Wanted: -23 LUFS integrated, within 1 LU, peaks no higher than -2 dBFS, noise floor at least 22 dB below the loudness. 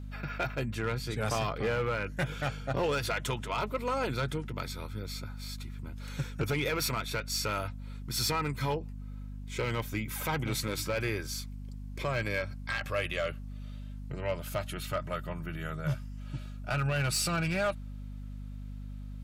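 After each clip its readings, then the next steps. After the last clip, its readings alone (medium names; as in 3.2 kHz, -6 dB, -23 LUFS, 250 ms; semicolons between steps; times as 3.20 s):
clipped samples 0.8%; clipping level -24.0 dBFS; hum 50 Hz; highest harmonic 250 Hz; hum level -38 dBFS; loudness -33.5 LUFS; peak level -24.0 dBFS; loudness target -23.0 LUFS
-> clip repair -24 dBFS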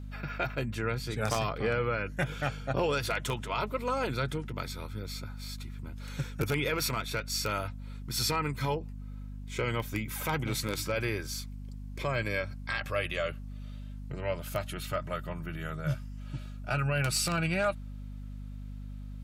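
clipped samples 0.0%; hum 50 Hz; highest harmonic 250 Hz; hum level -38 dBFS
-> hum notches 50/100/150/200/250 Hz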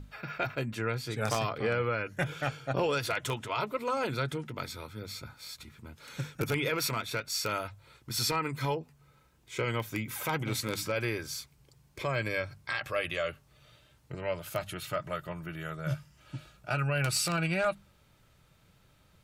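hum not found; loudness -33.0 LUFS; peak level -14.0 dBFS; loudness target -23.0 LUFS
-> trim +10 dB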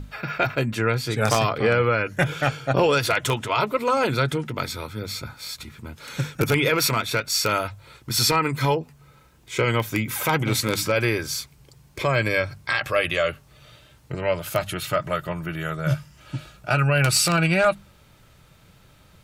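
loudness -23.0 LUFS; peak level -4.0 dBFS; noise floor -54 dBFS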